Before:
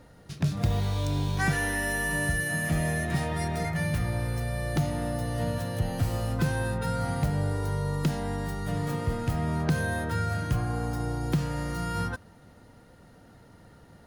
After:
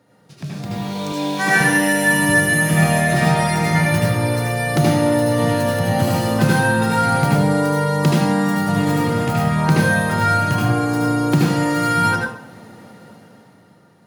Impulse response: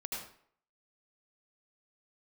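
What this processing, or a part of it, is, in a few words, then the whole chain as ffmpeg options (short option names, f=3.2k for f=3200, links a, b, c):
far laptop microphone: -filter_complex "[1:a]atrim=start_sample=2205[a];[0:a][a]afir=irnorm=-1:irlink=0,highpass=f=120:w=0.5412,highpass=f=120:w=1.3066,dynaudnorm=f=130:g=17:m=14.5dB,asettb=1/sr,asplit=3[b][c][d];[b]atrim=end=1.124[e];[c]atrim=start=1.12:end=1.61,asetpts=PTS-STARTPTS,afade=t=in:d=0.004:c=qsin,afade=t=out:st=0.486:d=0.004:c=qsin,highpass=240[f];[d]atrim=start=1.606[g];[e][f]acrossfade=d=0.004:c1=hsin:c2=qsin[h];[h][g]acrossfade=d=0.004:c1=qsin:c2=hsin"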